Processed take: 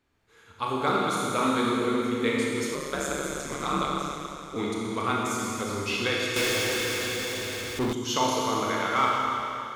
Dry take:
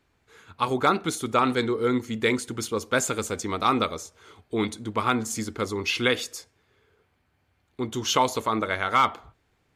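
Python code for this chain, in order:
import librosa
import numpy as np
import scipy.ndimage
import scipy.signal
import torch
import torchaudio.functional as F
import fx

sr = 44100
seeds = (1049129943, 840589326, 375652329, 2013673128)

y = fx.rev_schroeder(x, sr, rt60_s=2.9, comb_ms=27, drr_db=-4.0)
y = fx.ring_mod(y, sr, carrier_hz=71.0, at=(2.74, 4.56))
y = fx.power_curve(y, sr, exponent=0.35, at=(6.36, 7.93))
y = F.gain(torch.from_numpy(y), -6.5).numpy()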